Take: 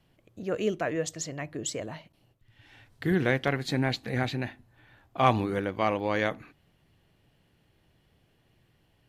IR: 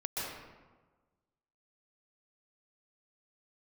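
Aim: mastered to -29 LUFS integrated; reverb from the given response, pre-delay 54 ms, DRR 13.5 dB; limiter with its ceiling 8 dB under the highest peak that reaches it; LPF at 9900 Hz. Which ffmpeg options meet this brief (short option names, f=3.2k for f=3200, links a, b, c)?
-filter_complex "[0:a]lowpass=9.9k,alimiter=limit=-17.5dB:level=0:latency=1,asplit=2[a][b];[1:a]atrim=start_sample=2205,adelay=54[c];[b][c]afir=irnorm=-1:irlink=0,volume=-18dB[d];[a][d]amix=inputs=2:normalize=0,volume=2dB"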